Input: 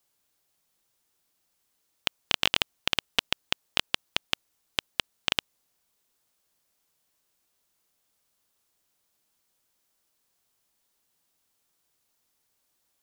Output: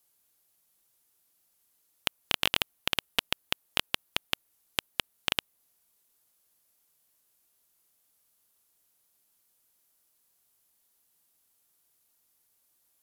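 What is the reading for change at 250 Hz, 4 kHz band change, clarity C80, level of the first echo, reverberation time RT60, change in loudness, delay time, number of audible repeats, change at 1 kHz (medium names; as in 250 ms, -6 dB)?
-1.5 dB, -2.5 dB, no reverb, no echo, no reverb, -2.5 dB, no echo, no echo, -1.5 dB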